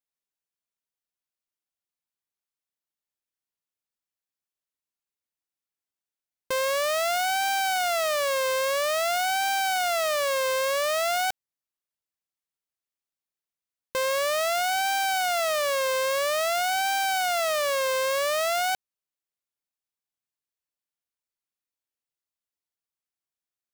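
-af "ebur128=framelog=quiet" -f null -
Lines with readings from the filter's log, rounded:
Integrated loudness:
  I:         -24.8 LUFS
  Threshold: -34.8 LUFS
Loudness range:
  LRA:         8.2 LU
  Threshold: -46.4 LUFS
  LRA low:   -32.6 LUFS
  LRA high:  -24.4 LUFS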